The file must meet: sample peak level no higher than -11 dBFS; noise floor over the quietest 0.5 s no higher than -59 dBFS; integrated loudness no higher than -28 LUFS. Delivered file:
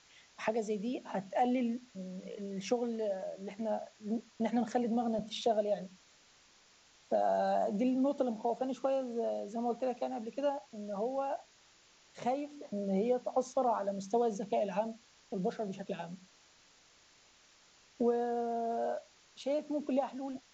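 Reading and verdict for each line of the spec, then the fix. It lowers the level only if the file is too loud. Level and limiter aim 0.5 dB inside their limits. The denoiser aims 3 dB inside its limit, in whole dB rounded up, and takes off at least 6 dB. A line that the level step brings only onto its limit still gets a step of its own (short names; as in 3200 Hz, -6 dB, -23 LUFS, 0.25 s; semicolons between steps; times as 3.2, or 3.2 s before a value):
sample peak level -19.0 dBFS: OK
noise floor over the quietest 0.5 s -64 dBFS: OK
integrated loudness -35.0 LUFS: OK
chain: none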